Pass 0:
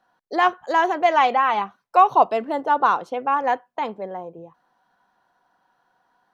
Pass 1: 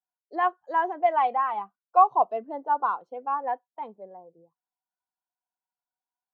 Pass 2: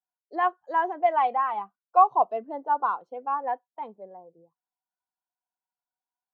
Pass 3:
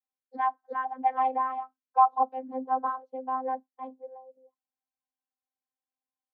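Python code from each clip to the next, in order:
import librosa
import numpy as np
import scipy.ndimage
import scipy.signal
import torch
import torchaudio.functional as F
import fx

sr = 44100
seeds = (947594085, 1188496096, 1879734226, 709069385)

y1 = fx.spectral_expand(x, sr, expansion=1.5)
y1 = F.gain(torch.from_numpy(y1), -3.5).numpy()
y2 = y1
y3 = fx.vocoder(y2, sr, bands=32, carrier='saw', carrier_hz=260.0)
y3 = F.gain(torch.from_numpy(y3), -2.0).numpy()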